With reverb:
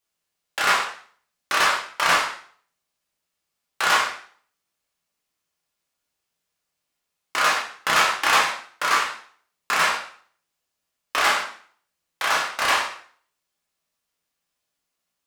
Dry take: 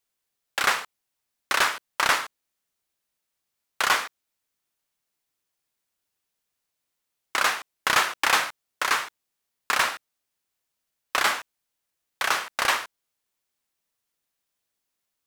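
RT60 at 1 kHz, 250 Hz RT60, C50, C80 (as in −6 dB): 0.50 s, 0.55 s, 5.5 dB, 9.5 dB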